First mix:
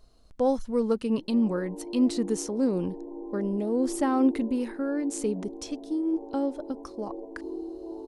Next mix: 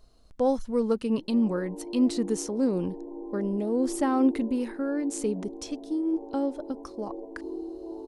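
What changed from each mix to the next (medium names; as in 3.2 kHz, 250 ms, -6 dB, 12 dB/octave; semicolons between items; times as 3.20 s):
no change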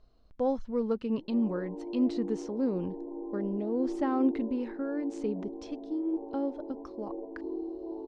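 speech -4.0 dB; master: add distance through air 180 m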